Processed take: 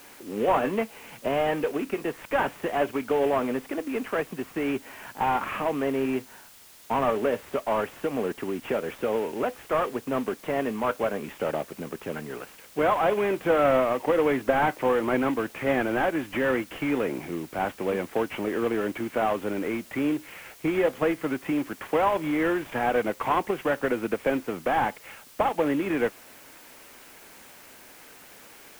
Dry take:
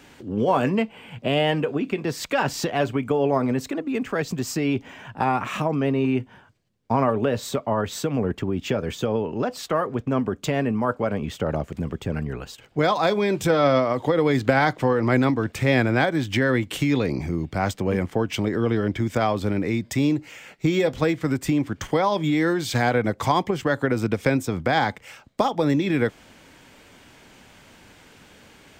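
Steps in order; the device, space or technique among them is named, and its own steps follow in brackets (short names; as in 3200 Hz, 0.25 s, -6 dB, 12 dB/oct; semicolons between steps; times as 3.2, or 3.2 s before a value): army field radio (BPF 320–2900 Hz; CVSD 16 kbps; white noise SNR 24 dB)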